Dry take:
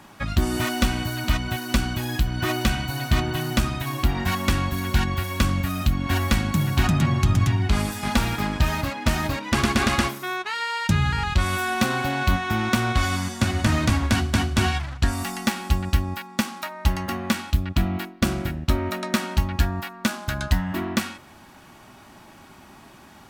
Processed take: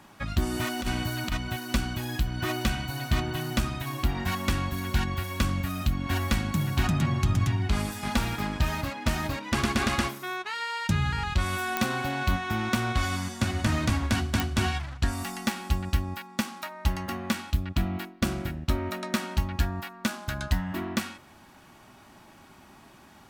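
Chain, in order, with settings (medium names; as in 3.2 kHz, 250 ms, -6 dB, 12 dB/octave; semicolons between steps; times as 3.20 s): 0.79–1.32 s: compressor with a negative ratio -21 dBFS, ratio -0.5; clicks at 11.77/14.40 s, -5 dBFS; trim -5 dB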